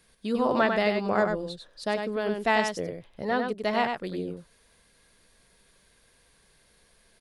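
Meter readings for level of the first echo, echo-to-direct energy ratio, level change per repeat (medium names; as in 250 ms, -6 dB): -5.5 dB, -5.5 dB, no regular repeats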